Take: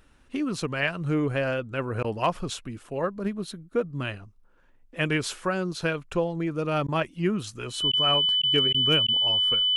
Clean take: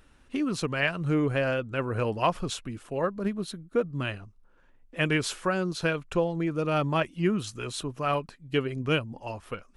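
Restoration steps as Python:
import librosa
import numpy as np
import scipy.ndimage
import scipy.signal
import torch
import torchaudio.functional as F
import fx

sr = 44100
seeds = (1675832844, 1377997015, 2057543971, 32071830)

y = fx.fix_declip(x, sr, threshold_db=-12.5)
y = fx.notch(y, sr, hz=3000.0, q=30.0)
y = fx.fix_interpolate(y, sr, at_s=(2.03, 6.87, 7.92, 8.42, 8.73, 9.07), length_ms=12.0)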